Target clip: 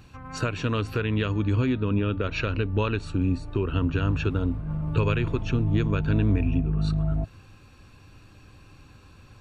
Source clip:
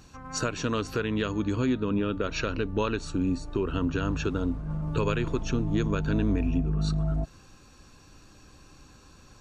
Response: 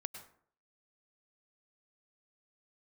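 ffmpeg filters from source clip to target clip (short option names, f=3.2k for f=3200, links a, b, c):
-af "equalizer=f=100:t=o:w=0.67:g=10,equalizer=f=2.5k:t=o:w=0.67:g=5,equalizer=f=6.3k:t=o:w=0.67:g=-10"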